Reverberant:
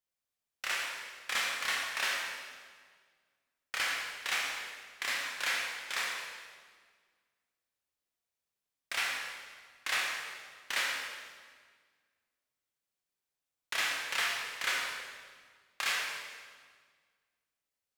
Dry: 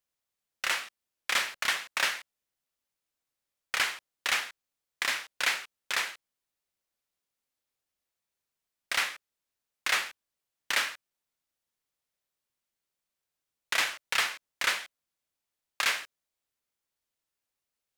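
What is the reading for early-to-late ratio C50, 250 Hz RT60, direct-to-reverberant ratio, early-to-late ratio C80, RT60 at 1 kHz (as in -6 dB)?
0.5 dB, 2.1 s, -2.0 dB, 2.5 dB, 1.7 s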